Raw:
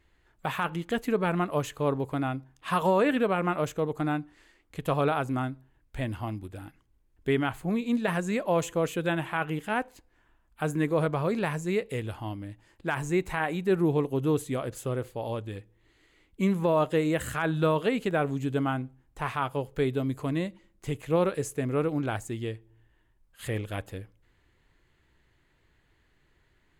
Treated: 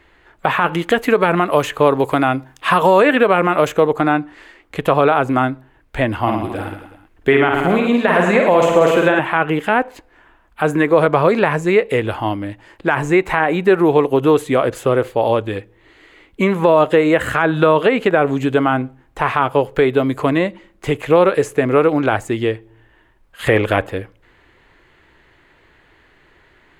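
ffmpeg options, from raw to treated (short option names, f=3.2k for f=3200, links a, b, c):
-filter_complex "[0:a]asettb=1/sr,asplit=3[a][b][c];[a]atrim=end=0.664[d];[b]atrim=start=0.66:end=3.87,asetpts=PTS-STARTPTS,afade=t=in:d=0.004:c=qsin,afade=t=out:st=3.206:d=0.004:c=qsin,highshelf=f=3.8k:g=11[e];[c]atrim=start=3.866[f];[d][e]acrossfade=d=0.004:c1=hsin:c2=qsin[g];[g][f]acrossfade=d=0.004:c1=qsin:c2=hsin,asettb=1/sr,asplit=3[h][i][j];[h]atrim=end=6.214[k];[i]atrim=start=6.21:end=9.19,asetpts=PTS-STARTPTS,afade=t=in:d=0.004:c=qsin,afade=t=out:st=2.976:d=0.004:c=qsin,aecho=1:1:50|110|182|268.4|372.1:0.631|0.398|0.251|0.158|0.1,atrim=end_sample=131418[l];[j]atrim=start=9.186[m];[k][l]acrossfade=d=0.004:c1=hsin:c2=qsin[n];[n][m]acrossfade=d=0.004:c1=qsin:c2=hsin,asplit=3[o][p][q];[o]atrim=end=23.472[r];[p]atrim=start=23.468:end=23.872,asetpts=PTS-STARTPTS,volume=7dB[s];[q]atrim=start=23.868[t];[r][s]acrossfade=d=0.004:c1=hsin:c2=hsin[u];[u][t]acrossfade=d=0.004:c1=hsin:c2=hsin,bass=f=250:g=-10,treble=f=4k:g=-11,acrossover=split=460|2700[v][w][x];[v]acompressor=threshold=-35dB:ratio=4[y];[w]acompressor=threshold=-30dB:ratio=4[z];[x]acompressor=threshold=-52dB:ratio=4[aa];[y][z][aa]amix=inputs=3:normalize=0,alimiter=level_in=20.5dB:limit=-1dB:release=50:level=0:latency=1,volume=-1.5dB"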